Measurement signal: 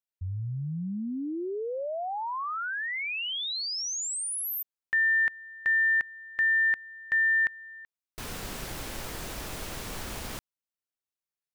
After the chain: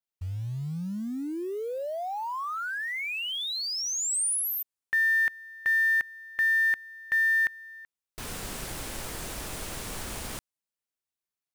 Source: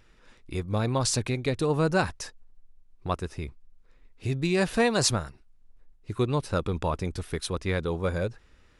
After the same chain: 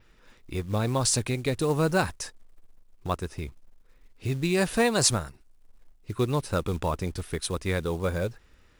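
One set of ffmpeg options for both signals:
-af "acrusher=bits=6:mode=log:mix=0:aa=0.000001,adynamicequalizer=threshold=0.00316:dfrequency=9100:dqfactor=1.4:tfrequency=9100:tqfactor=1.4:attack=5:release=100:ratio=0.375:range=3:mode=boostabove:tftype=bell"

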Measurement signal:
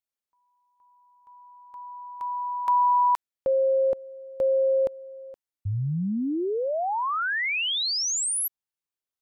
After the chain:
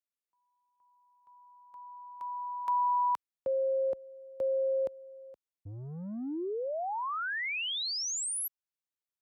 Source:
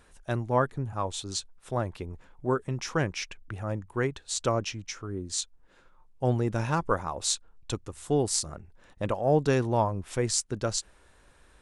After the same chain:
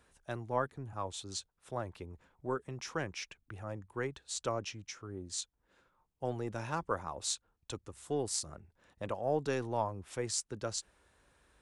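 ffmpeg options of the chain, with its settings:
-filter_complex "[0:a]highpass=47,acrossover=split=270[a][b];[a]asoftclip=type=tanh:threshold=-34dB[c];[c][b]amix=inputs=2:normalize=0,volume=-7.5dB"

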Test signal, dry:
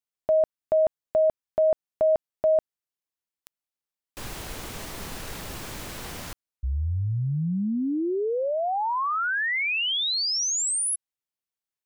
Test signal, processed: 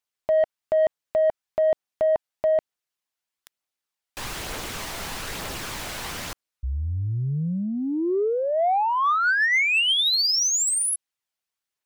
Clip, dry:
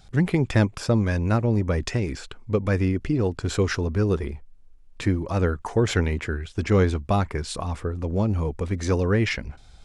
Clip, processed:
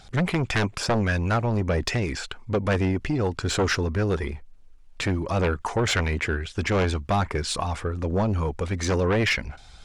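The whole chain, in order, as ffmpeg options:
-filter_complex "[0:a]aphaser=in_gain=1:out_gain=1:delay=1.5:decay=0.25:speed=1.1:type=triangular,aeval=exprs='0.473*sin(PI/2*2.51*val(0)/0.473)':c=same,asplit=2[a][b];[b]highpass=f=720:p=1,volume=6dB,asoftclip=type=tanh:threshold=-6.5dB[c];[a][c]amix=inputs=2:normalize=0,lowpass=f=7.4k:p=1,volume=-6dB,volume=-8dB"

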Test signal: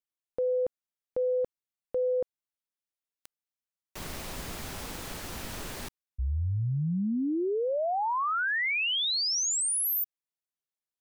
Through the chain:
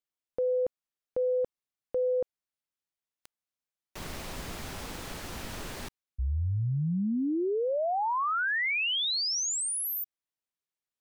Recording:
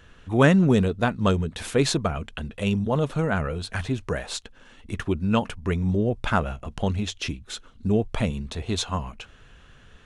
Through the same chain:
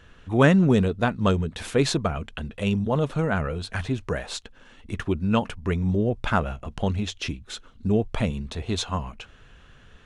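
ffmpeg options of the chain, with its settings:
-af "highshelf=f=8.2k:g=-5.5"

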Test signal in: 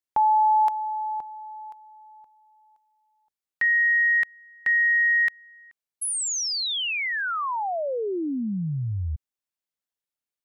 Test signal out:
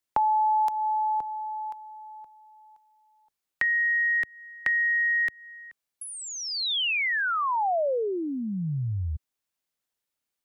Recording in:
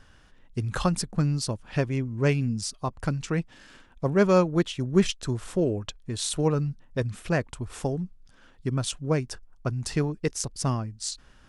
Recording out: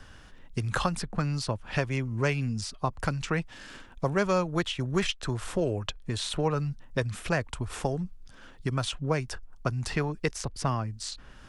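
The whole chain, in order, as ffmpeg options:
-filter_complex "[0:a]acrossover=split=110|570|3500[a][b][c][d];[a]acompressor=threshold=-40dB:ratio=4[e];[b]acompressor=threshold=-39dB:ratio=4[f];[c]acompressor=threshold=-32dB:ratio=4[g];[d]acompressor=threshold=-48dB:ratio=4[h];[e][f][g][h]amix=inputs=4:normalize=0,volume=5.5dB"

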